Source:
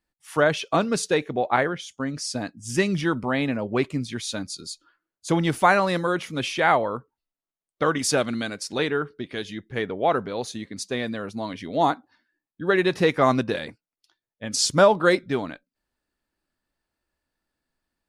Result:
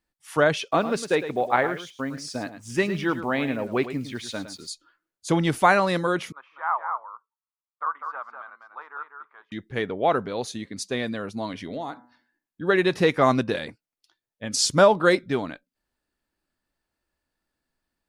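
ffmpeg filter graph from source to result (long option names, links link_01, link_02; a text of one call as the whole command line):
ffmpeg -i in.wav -filter_complex "[0:a]asettb=1/sr,asplit=3[link_01][link_02][link_03];[link_01]atrim=end=0.714[link_04];[link_02]atrim=start=0.71:end=4.68,asetpts=PTS-STARTPTS,afade=type=in:duration=0.004:curve=qsin,afade=type=out:start_time=3.966:duration=0.004:curve=qsin,bass=frequency=250:gain=-5,treble=frequency=4000:gain=-8,acrusher=bits=8:mix=0:aa=0.5,aecho=1:1:107:0.266,atrim=end_sample=175077[link_05];[link_03]atrim=start=4.676[link_06];[link_04][link_05]acrossfade=duration=0.004:curve1=hsin:curve2=qsin[link_07];[link_07][link_06]acrossfade=duration=0.004:curve1=qsin:curve2=hsin,asettb=1/sr,asplit=3[link_08][link_09][link_10];[link_08]atrim=end=6.324[link_11];[link_09]atrim=start=6.32:end=9.52,asetpts=PTS-STARTPTS,afade=type=in:duration=0.004:curve=qsin,afade=type=out:start_time=3.196:duration=0.004:curve=qsin,asuperpass=centerf=1100:order=4:qfactor=2.6,aecho=1:1:198:0.501,atrim=end_sample=141120[link_12];[link_10]atrim=start=9.516[link_13];[link_11][link_12]acrossfade=duration=0.004:curve1=hsin:curve2=qsin[link_14];[link_14][link_13]acrossfade=duration=0.004:curve1=qsin:curve2=hsin,asettb=1/sr,asplit=3[link_15][link_16][link_17];[link_15]atrim=end=11.514[link_18];[link_16]atrim=start=11.51:end=12.63,asetpts=PTS-STARTPTS,afade=type=in:duration=0.004:curve=qsin,afade=type=out:start_time=1.116:duration=0.004:curve=qsin,acompressor=threshold=-28dB:ratio=10:attack=3.2:release=140:knee=1:detection=peak,bandreject=frequency=122.1:width_type=h:width=4,bandreject=frequency=244.2:width_type=h:width=4,bandreject=frequency=366.3:width_type=h:width=4,bandreject=frequency=488.4:width_type=h:width=4,bandreject=frequency=610.5:width_type=h:width=4,bandreject=frequency=732.6:width_type=h:width=4,bandreject=frequency=854.7:width_type=h:width=4,bandreject=frequency=976.8:width_type=h:width=4,bandreject=frequency=1098.9:width_type=h:width=4,bandreject=frequency=1221:width_type=h:width=4,bandreject=frequency=1343.1:width_type=h:width=4,bandreject=frequency=1465.2:width_type=h:width=4,bandreject=frequency=1587.3:width_type=h:width=4,bandreject=frequency=1709.4:width_type=h:width=4,bandreject=frequency=1831.5:width_type=h:width=4,bandreject=frequency=1953.6:width_type=h:width=4,bandreject=frequency=2075.7:width_type=h:width=4[link_19];[link_17]atrim=start=12.626[link_20];[link_18][link_19]acrossfade=duration=0.004:curve1=hsin:curve2=qsin[link_21];[link_21][link_20]acrossfade=duration=0.004:curve1=qsin:curve2=hsin" out.wav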